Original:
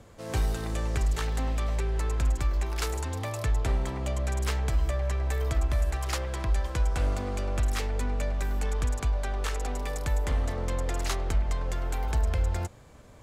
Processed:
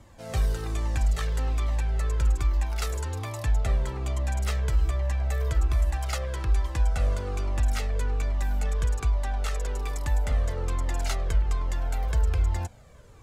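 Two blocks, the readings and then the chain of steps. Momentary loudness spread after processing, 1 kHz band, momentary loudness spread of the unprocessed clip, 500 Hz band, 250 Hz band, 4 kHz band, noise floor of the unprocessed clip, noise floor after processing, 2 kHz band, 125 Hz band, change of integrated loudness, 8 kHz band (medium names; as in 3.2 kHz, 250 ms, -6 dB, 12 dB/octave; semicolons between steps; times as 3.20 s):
5 LU, -1.0 dB, 4 LU, -2.0 dB, -3.0 dB, -1.0 dB, -50 dBFS, -49 dBFS, -0.5 dB, +2.0 dB, +2.0 dB, -1.0 dB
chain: Shepard-style flanger falling 1.2 Hz; trim +3.5 dB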